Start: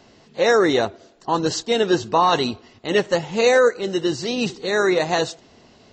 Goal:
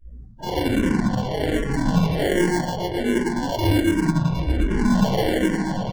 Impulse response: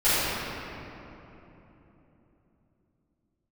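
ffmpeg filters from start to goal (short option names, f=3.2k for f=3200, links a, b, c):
-filter_complex "[0:a]asettb=1/sr,asplit=3[a][b][c];[a]atrim=end=2.354[d];[b]atrim=start=2.35:end=3.36,asetpts=PTS-STARTPTS,afade=t=in:d=0.004:c=qsin,afade=t=out:st=1.006:d=0.004:c=qsin,equalizer=f=190:w=0.71:g=-12.5[e];[c]atrim=start=3.356[f];[d][e]acrossfade=d=0.004:c1=hsin:c2=qsin[g];[g][f]acrossfade=d=0.004:c1=qsin:c2=hsin,asplit=2[h][i];[i]adelay=116.6,volume=-7dB,highshelf=f=4k:g=-2.62[j];[h][j]amix=inputs=2:normalize=0,lowpass=f=2.3k:t=q:w=0.5098,lowpass=f=2.3k:t=q:w=0.6013,lowpass=f=2.3k:t=q:w=0.9,lowpass=f=2.3k:t=q:w=2.563,afreqshift=-2700,aeval=exprs='val(0)+0.00562*(sin(2*PI*60*n/s)+sin(2*PI*2*60*n/s)/2+sin(2*PI*3*60*n/s)/3+sin(2*PI*4*60*n/s)/4+sin(2*PI*5*60*n/s)/5)':c=same,flanger=delay=18.5:depth=3.1:speed=0.41[k];[1:a]atrim=start_sample=2205,asetrate=28224,aresample=44100[l];[k][l]afir=irnorm=-1:irlink=0,acrusher=samples=35:mix=1:aa=0.000001,dynaudnorm=f=210:g=3:m=11.5dB,afftdn=nr=27:nf=-29,lowshelf=f=240:g=5.5,asplit=2[m][n];[n]afreqshift=-1.3[o];[m][o]amix=inputs=2:normalize=1,volume=-8.5dB"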